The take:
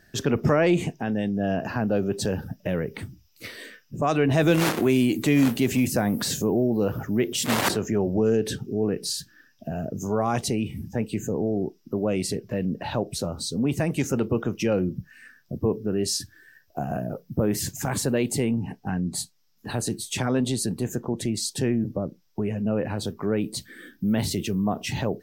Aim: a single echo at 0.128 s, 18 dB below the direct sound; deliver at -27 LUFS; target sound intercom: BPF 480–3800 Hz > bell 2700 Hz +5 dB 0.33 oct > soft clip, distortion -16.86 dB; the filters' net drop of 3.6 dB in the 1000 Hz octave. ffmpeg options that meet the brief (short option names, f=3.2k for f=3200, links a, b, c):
-af "highpass=480,lowpass=3.8k,equalizer=f=1k:t=o:g=-4.5,equalizer=f=2.7k:t=o:w=0.33:g=5,aecho=1:1:128:0.126,asoftclip=threshold=-21dB,volume=6.5dB"